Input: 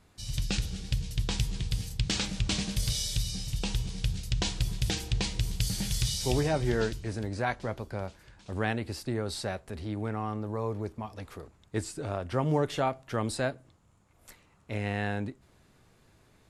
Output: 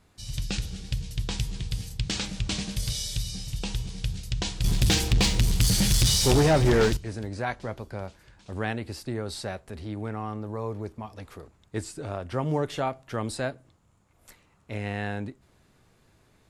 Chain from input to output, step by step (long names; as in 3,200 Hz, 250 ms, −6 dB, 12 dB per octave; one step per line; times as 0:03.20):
0:04.64–0:06.97: leveller curve on the samples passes 3